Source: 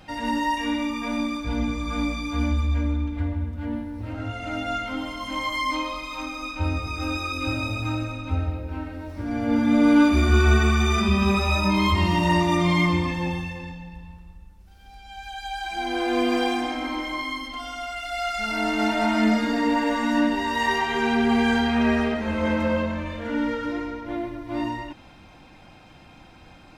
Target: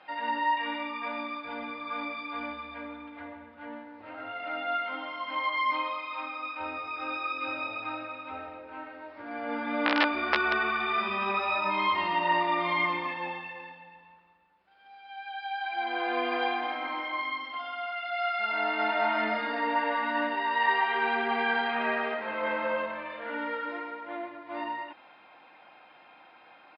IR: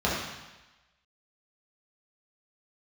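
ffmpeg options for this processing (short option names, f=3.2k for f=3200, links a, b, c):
-af "aresample=11025,aeval=exprs='(mod(2.66*val(0)+1,2)-1)/2.66':c=same,aresample=44100,highpass=660,lowpass=2.4k"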